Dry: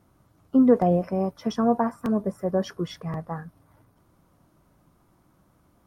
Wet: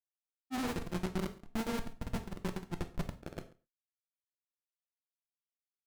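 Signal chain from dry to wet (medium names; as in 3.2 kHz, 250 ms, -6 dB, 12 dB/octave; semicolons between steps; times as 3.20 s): sorted samples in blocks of 32 samples; high-pass 70 Hz 24 dB/octave; bass shelf 200 Hz -4.5 dB; band-stop 1.2 kHz, Q 6.7; compression 4:1, threshold -24 dBFS, peak gain reduction 10 dB; low-pass that closes with the level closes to 490 Hz, closed at -27.5 dBFS; Schmitt trigger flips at -28 dBFS; granulator; delay 137 ms -22.5 dB; gated-style reverb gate 140 ms falling, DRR 7 dB; tape noise reduction on one side only decoder only; trim +3.5 dB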